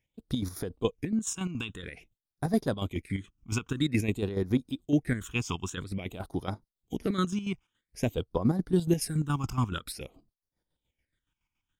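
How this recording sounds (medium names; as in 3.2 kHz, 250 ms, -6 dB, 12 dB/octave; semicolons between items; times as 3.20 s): phasing stages 8, 0.5 Hz, lowest notch 520–2700 Hz; chopped level 7.1 Hz, depth 60%, duty 45%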